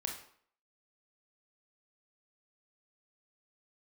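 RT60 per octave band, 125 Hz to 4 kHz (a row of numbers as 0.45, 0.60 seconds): 0.50, 0.55, 0.60, 0.60, 0.50, 0.45 seconds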